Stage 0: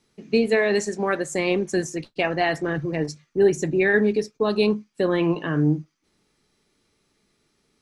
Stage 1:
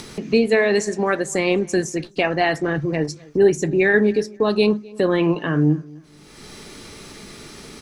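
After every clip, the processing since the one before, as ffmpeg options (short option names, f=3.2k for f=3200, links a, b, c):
-filter_complex "[0:a]acompressor=mode=upward:threshold=-21dB:ratio=2.5,asplit=2[a][b];[b]adelay=257,lowpass=f=2.1k:p=1,volume=-23dB,asplit=2[c][d];[d]adelay=257,lowpass=f=2.1k:p=1,volume=0.32[e];[a][c][e]amix=inputs=3:normalize=0,volume=3dB"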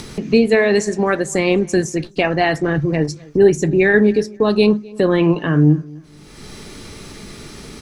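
-af "lowshelf=f=170:g=7.5,volume=2dB"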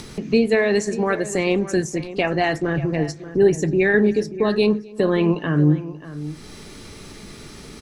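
-filter_complex "[0:a]asplit=2[a][b];[b]adelay=583.1,volume=-14dB,highshelf=f=4k:g=-13.1[c];[a][c]amix=inputs=2:normalize=0,volume=-4dB"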